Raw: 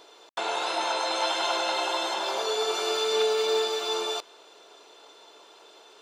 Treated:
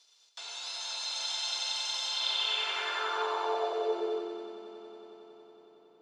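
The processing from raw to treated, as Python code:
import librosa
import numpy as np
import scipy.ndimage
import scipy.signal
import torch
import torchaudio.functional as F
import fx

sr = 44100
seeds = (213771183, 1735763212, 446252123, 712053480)

y = np.sign(x) * np.maximum(np.abs(x) - 10.0 ** (-59.5 / 20.0), 0.0)
y = fx.echo_swell(y, sr, ms=92, loudest=5, wet_db=-7.0)
y = fx.filter_sweep_bandpass(y, sr, from_hz=5400.0, to_hz=210.0, start_s=2.04, end_s=4.6, q=2.1)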